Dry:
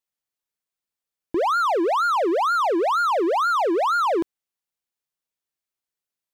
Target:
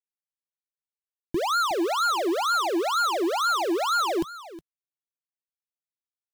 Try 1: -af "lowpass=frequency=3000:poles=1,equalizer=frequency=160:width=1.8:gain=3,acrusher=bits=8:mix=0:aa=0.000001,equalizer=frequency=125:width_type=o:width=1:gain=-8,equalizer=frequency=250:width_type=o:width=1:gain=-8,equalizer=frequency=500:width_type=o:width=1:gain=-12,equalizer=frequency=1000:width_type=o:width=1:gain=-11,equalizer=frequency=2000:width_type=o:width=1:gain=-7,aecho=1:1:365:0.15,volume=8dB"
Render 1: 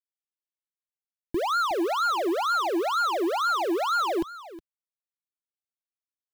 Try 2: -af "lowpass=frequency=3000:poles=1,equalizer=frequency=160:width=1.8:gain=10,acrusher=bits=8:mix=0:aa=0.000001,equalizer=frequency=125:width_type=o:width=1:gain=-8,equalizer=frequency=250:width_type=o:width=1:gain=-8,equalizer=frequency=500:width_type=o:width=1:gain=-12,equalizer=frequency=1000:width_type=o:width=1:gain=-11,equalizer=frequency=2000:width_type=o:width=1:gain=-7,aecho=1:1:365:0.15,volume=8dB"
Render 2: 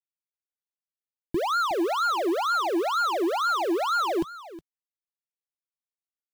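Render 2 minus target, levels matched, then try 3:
4,000 Hz band −3.0 dB
-af "equalizer=frequency=160:width=1.8:gain=10,acrusher=bits=8:mix=0:aa=0.000001,equalizer=frequency=125:width_type=o:width=1:gain=-8,equalizer=frequency=250:width_type=o:width=1:gain=-8,equalizer=frequency=500:width_type=o:width=1:gain=-12,equalizer=frequency=1000:width_type=o:width=1:gain=-11,equalizer=frequency=2000:width_type=o:width=1:gain=-7,aecho=1:1:365:0.15,volume=8dB"

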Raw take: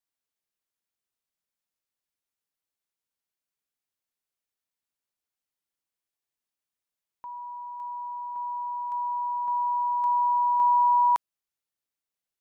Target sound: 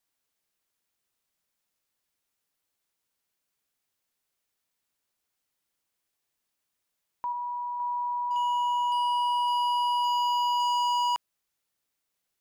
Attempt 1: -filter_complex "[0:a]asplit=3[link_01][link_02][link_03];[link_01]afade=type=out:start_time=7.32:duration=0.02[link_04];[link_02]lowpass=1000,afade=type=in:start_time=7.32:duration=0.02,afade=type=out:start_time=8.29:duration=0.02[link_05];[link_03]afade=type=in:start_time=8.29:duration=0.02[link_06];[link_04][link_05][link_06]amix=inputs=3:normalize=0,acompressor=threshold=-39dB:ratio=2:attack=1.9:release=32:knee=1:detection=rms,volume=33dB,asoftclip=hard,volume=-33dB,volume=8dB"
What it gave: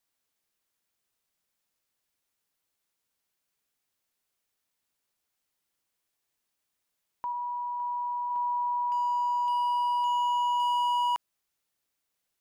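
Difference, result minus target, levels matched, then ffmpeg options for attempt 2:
downward compressor: peak gain reduction +6 dB
-filter_complex "[0:a]asplit=3[link_01][link_02][link_03];[link_01]afade=type=out:start_time=7.32:duration=0.02[link_04];[link_02]lowpass=1000,afade=type=in:start_time=7.32:duration=0.02,afade=type=out:start_time=8.29:duration=0.02[link_05];[link_03]afade=type=in:start_time=8.29:duration=0.02[link_06];[link_04][link_05][link_06]amix=inputs=3:normalize=0,acompressor=threshold=-27.5dB:ratio=2:attack=1.9:release=32:knee=1:detection=rms,volume=33dB,asoftclip=hard,volume=-33dB,volume=8dB"

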